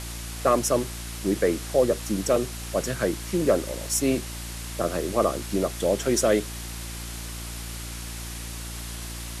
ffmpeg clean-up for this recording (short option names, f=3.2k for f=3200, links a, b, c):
-af "bandreject=f=57.7:t=h:w=4,bandreject=f=115.4:t=h:w=4,bandreject=f=173.1:t=h:w=4,bandreject=f=230.8:t=h:w=4,bandreject=f=288.5:t=h:w=4,bandreject=f=346.2:t=h:w=4,afftdn=nr=30:nf=-35"